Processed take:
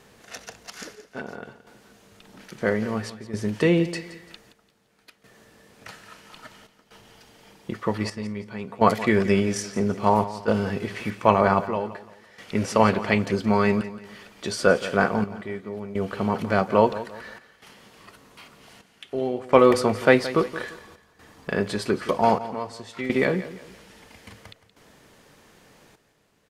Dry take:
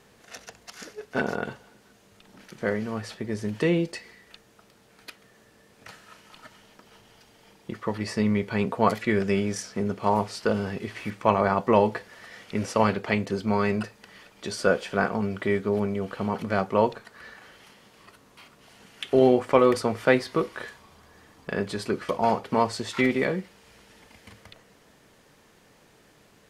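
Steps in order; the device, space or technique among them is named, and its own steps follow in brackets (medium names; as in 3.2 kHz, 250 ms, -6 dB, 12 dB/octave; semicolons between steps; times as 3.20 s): trance gate with a delay (trance gate "xxxx...xxxxxx.x" 63 bpm -12 dB; feedback delay 172 ms, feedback 35%, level -15 dB); trim +3.5 dB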